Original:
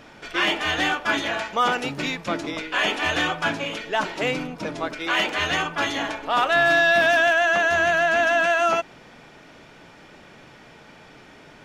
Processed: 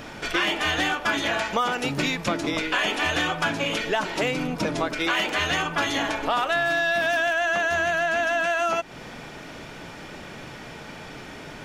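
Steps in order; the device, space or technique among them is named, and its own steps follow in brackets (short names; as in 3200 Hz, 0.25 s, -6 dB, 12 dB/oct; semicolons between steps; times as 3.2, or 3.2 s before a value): ASMR close-microphone chain (low shelf 160 Hz +4 dB; compressor 5:1, threshold -29 dBFS, peak gain reduction 13.5 dB; high shelf 8300 Hz +7 dB); gain +7 dB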